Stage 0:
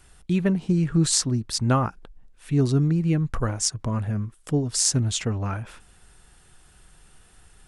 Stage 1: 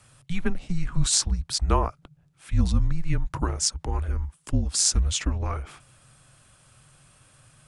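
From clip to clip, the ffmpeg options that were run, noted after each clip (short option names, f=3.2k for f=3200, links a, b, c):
-af "highpass=45,afreqshift=-180"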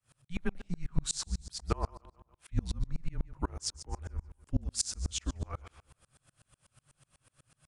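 -af "aecho=1:1:144|288|432|576:0.141|0.065|0.0299|0.0137,aeval=exprs='val(0)*pow(10,-33*if(lt(mod(-8.1*n/s,1),2*abs(-8.1)/1000),1-mod(-8.1*n/s,1)/(2*abs(-8.1)/1000),(mod(-8.1*n/s,1)-2*abs(-8.1)/1000)/(1-2*abs(-8.1)/1000))/20)':c=same,volume=-2.5dB"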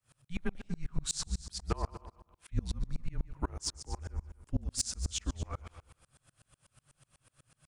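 -af "asoftclip=type=tanh:threshold=-19dB,aecho=1:1:240:0.158"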